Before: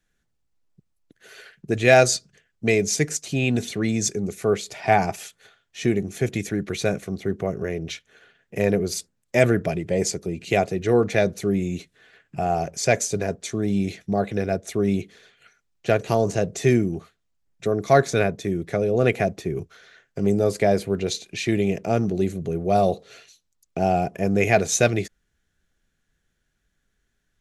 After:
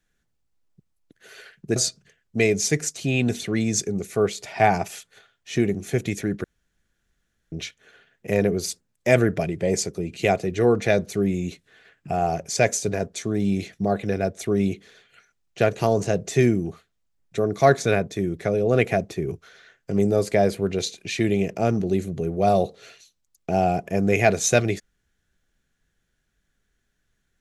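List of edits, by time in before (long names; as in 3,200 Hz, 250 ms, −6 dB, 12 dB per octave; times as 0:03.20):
0:01.76–0:02.04: remove
0:06.72–0:07.80: fill with room tone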